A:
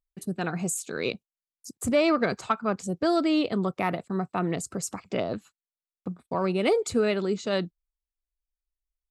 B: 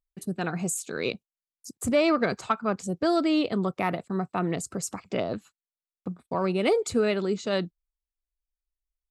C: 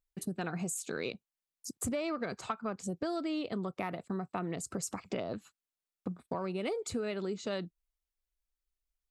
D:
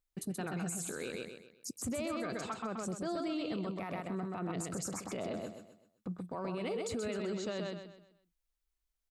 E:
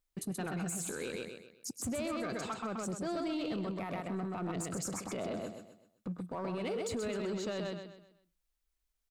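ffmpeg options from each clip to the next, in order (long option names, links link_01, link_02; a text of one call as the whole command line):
ffmpeg -i in.wav -af anull out.wav
ffmpeg -i in.wav -af "acompressor=threshold=-33dB:ratio=6" out.wav
ffmpeg -i in.wav -filter_complex "[0:a]asplit=2[link_01][link_02];[link_02]aecho=0:1:128|256|384|512|640:0.562|0.208|0.077|0.0285|0.0105[link_03];[link_01][link_03]amix=inputs=2:normalize=0,alimiter=level_in=5.5dB:limit=-24dB:level=0:latency=1:release=19,volume=-5.5dB" out.wav
ffmpeg -i in.wav -filter_complex "[0:a]asplit=2[link_01][link_02];[link_02]aeval=exprs='0.0126*(abs(mod(val(0)/0.0126+3,4)-2)-1)':channel_layout=same,volume=-12dB[link_03];[link_01][link_03]amix=inputs=2:normalize=0,aecho=1:1:102:0.075" out.wav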